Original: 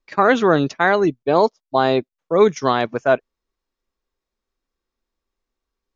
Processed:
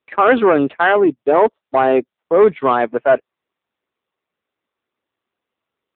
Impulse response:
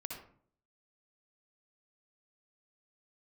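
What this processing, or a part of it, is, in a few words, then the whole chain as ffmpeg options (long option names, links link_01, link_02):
telephone: -af "highpass=250,lowpass=3500,asoftclip=type=tanh:threshold=-10.5dB,volume=6.5dB" -ar 8000 -c:a libopencore_amrnb -b:a 7400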